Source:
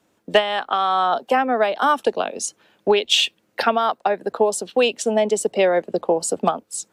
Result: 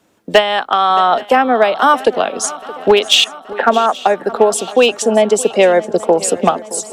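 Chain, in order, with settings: 3.24–3.95 s: Chebyshev band-pass 200–1800 Hz, order 3; hard clipper -9 dBFS, distortion -26 dB; shuffle delay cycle 827 ms, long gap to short 3:1, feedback 52%, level -18 dB; trim +7 dB

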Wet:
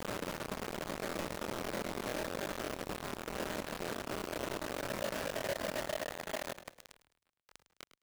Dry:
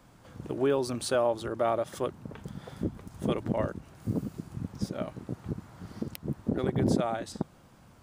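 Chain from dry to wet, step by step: in parallel at -0.5 dB: compression 16:1, threshold -36 dBFS, peak gain reduction 16.5 dB; on the sum: Paulstretch 23×, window 1.00 s, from 4.85 s; band-pass sweep 430 Hz -> 1.1 kHz, 4.57–7.53 s; bit crusher 6-bit; on a send: frequency-shifting echo 105 ms, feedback 43%, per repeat -38 Hz, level -14.5 dB; on the sum: crackling interface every 0.11 s, samples 1024, repeat, from 0.98 s

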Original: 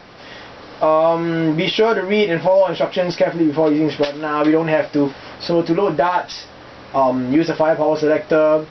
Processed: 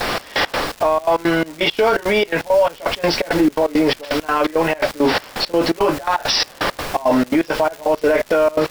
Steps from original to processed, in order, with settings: high-pass 490 Hz 6 dB/octave; gate with hold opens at -37 dBFS; reverse; compression 6:1, threshold -31 dBFS, peak gain reduction 17.5 dB; reverse; added noise pink -54 dBFS; trance gate "xx..x.xx.xx.x." 168 bpm -24 dB; crackle 320 per s -49 dBFS; loudness maximiser +29.5 dB; trim -6.5 dB

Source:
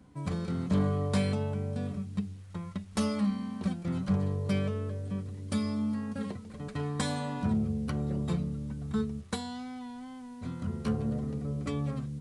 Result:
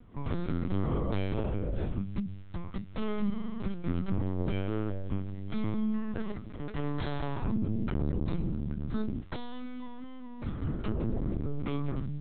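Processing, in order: band-stop 760 Hz, Q 12; peak limiter -25.5 dBFS, peak gain reduction 6.5 dB; LPC vocoder at 8 kHz pitch kept; trim +3 dB

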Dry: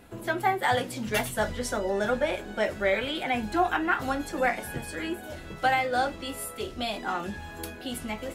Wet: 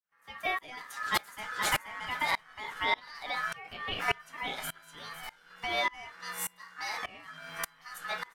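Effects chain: fade-in on the opening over 0.85 s; 4.46–5.55 s: peaking EQ 370 Hz -14.5 dB 0.49 oct; ring modulator 1.5 kHz; peaking EQ 60 Hz -10 dB 1.9 oct; peak limiter -20.5 dBFS, peak gain reduction 7 dB; 0.79–1.57 s: echo throw 480 ms, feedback 30%, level -1.5 dB; sawtooth tremolo in dB swelling 1.7 Hz, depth 26 dB; trim +6 dB

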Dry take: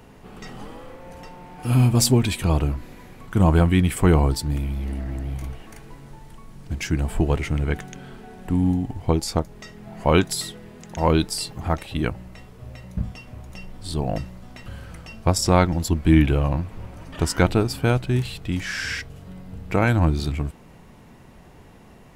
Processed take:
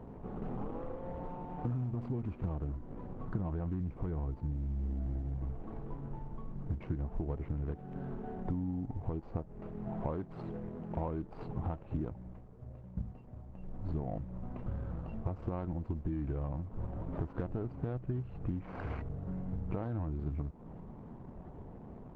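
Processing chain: median filter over 25 samples; low-pass 1.4 kHz 12 dB/octave; 3.74–5.22 s: bass shelf 220 Hz +4.5 dB; 12.05–13.97 s: dip -10 dB, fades 0.39 s; peak limiter -13.5 dBFS, peak gain reduction 11.5 dB; compression 16:1, threshold -33 dBFS, peak gain reduction 17 dB; trim +1 dB; Opus 16 kbps 48 kHz

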